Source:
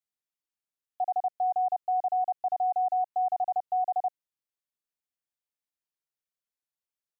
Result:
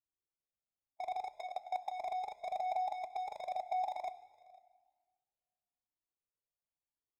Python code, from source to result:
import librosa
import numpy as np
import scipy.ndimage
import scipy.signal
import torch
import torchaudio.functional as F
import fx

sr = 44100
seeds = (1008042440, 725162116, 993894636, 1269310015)

y = fx.wiener(x, sr, points=25)
y = y + 10.0 ** (-14.0 / 20.0) * np.pad(y, (int(502 * sr / 1000.0), 0))[:len(y)]
y = fx.hpss(y, sr, part='harmonic', gain_db=-16)
y = fx.highpass(y, sr, hz=fx.line((1.32, 730.0), (1.9, 910.0)), slope=6, at=(1.32, 1.9), fade=0.02)
y = fx.level_steps(y, sr, step_db=23)
y = fx.rev_fdn(y, sr, rt60_s=1.7, lf_ratio=1.25, hf_ratio=0.9, size_ms=56.0, drr_db=12.0)
y = fx.comb_cascade(y, sr, direction='rising', hz=1.0)
y = F.gain(torch.from_numpy(y), 13.0).numpy()